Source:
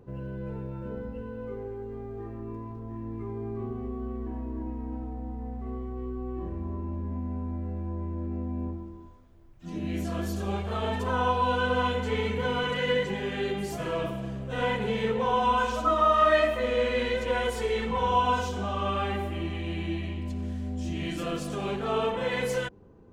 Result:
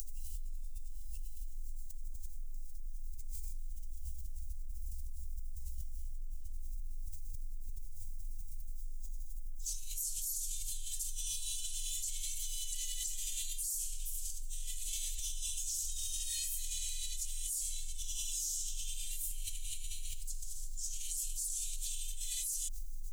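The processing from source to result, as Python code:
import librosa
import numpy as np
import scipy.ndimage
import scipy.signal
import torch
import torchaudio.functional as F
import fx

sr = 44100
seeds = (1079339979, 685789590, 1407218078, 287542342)

y = scipy.signal.sosfilt(scipy.signal.cheby2(4, 80, [120.0, 1400.0], 'bandstop', fs=sr, output='sos'), x)
y = fx.quant_float(y, sr, bits=6)
y = fx.env_flatten(y, sr, amount_pct=100)
y = y * librosa.db_to_amplitude(5.5)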